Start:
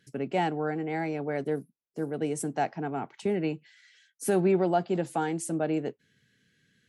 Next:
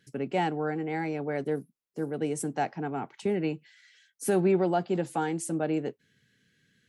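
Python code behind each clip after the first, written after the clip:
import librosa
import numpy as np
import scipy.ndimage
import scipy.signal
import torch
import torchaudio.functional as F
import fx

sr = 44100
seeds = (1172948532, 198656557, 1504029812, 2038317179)

y = fx.notch(x, sr, hz=660.0, q=12.0)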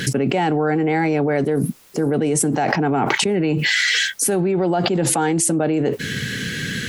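y = fx.env_flatten(x, sr, amount_pct=100)
y = F.gain(torch.from_numpy(y), 2.5).numpy()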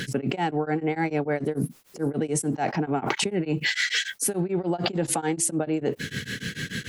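y = x * np.abs(np.cos(np.pi * 6.8 * np.arange(len(x)) / sr))
y = F.gain(torch.from_numpy(y), -4.5).numpy()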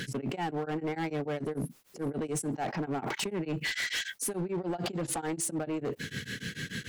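y = np.clip(x, -10.0 ** (-22.5 / 20.0), 10.0 ** (-22.5 / 20.0))
y = F.gain(torch.from_numpy(y), -5.5).numpy()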